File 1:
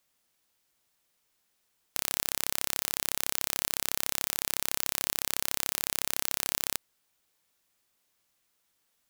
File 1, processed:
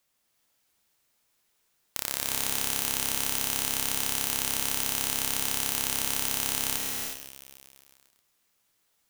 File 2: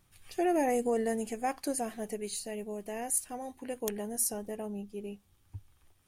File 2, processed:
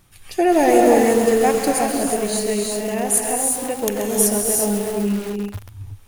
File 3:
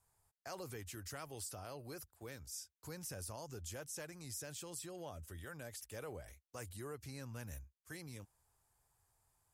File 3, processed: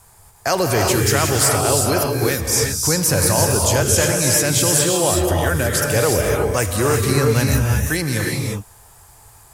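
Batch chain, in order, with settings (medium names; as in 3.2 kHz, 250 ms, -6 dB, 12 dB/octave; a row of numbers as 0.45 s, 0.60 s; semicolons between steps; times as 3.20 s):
gated-style reverb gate 390 ms rising, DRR 0 dB; bit-crushed delay 133 ms, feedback 80%, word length 6-bit, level -9.5 dB; peak normalisation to -1.5 dBFS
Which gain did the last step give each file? -0.5 dB, +12.0 dB, +28.5 dB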